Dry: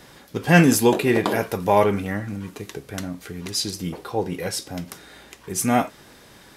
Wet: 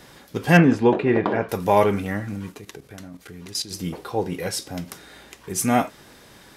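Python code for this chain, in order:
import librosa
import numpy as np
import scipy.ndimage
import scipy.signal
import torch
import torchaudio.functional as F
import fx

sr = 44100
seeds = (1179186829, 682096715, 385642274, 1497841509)

y = fx.lowpass(x, sr, hz=2000.0, slope=12, at=(0.57, 1.49))
y = fx.level_steps(y, sr, step_db=13, at=(2.52, 3.71))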